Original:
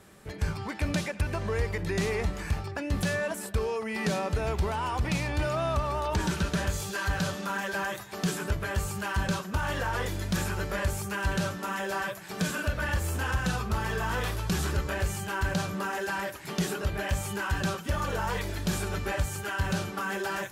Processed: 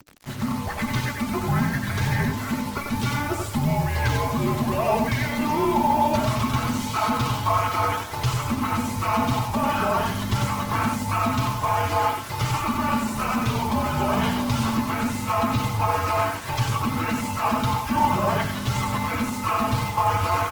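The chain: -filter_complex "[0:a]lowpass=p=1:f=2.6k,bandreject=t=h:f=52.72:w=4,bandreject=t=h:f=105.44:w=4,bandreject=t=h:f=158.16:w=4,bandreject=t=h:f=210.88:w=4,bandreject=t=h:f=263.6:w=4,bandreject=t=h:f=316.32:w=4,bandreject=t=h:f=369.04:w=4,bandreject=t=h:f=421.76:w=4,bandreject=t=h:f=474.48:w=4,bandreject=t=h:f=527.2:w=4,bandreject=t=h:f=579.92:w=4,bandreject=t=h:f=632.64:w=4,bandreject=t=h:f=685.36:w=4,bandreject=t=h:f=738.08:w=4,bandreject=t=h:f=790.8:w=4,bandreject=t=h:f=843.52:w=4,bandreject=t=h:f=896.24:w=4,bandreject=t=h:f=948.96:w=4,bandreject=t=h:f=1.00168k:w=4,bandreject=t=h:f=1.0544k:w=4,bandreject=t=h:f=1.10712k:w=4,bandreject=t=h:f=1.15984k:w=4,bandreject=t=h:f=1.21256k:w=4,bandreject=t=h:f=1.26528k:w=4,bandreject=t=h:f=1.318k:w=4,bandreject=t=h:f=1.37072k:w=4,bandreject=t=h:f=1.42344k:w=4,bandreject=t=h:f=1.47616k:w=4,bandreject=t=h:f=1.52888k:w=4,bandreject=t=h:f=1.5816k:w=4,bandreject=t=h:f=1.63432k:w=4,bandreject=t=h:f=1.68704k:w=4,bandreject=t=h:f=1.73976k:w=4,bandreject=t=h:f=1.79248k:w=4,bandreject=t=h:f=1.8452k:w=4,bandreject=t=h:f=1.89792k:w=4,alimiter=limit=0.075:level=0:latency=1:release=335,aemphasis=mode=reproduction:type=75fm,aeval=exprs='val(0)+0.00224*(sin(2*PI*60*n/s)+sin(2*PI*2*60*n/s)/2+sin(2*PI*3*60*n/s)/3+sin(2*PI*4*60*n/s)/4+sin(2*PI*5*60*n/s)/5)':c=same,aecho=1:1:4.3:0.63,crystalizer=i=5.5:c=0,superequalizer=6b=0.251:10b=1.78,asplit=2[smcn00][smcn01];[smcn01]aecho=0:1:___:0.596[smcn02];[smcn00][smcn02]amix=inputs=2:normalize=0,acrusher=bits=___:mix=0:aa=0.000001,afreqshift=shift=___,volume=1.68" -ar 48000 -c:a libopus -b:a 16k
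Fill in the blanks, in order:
92, 6, -300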